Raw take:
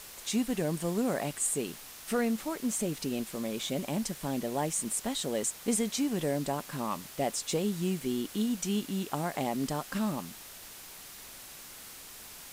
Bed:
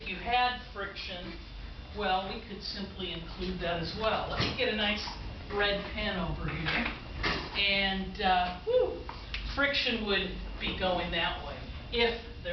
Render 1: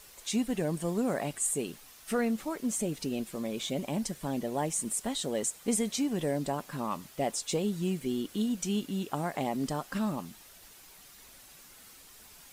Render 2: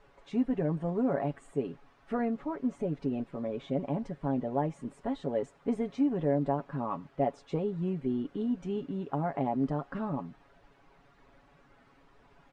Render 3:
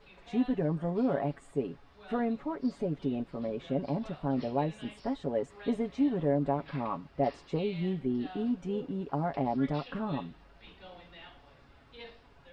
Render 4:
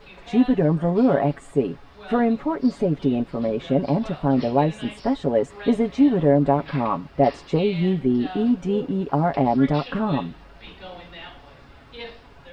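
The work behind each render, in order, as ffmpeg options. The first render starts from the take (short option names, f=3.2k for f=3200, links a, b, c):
-af "afftdn=nr=8:nf=-48"
-af "lowpass=1.3k,aecho=1:1:7.2:0.55"
-filter_complex "[1:a]volume=-20.5dB[a];[0:a][a]amix=inputs=2:normalize=0"
-af "volume=11dB"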